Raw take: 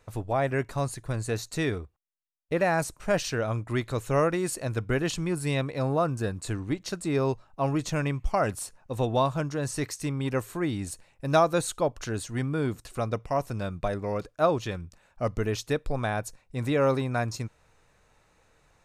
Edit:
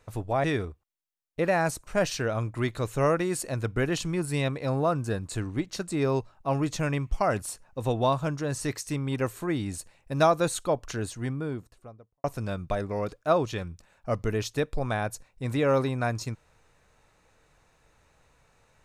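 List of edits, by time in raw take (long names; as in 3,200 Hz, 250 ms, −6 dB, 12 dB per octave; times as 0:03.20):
0:00.44–0:01.57: remove
0:12.03–0:13.37: fade out and dull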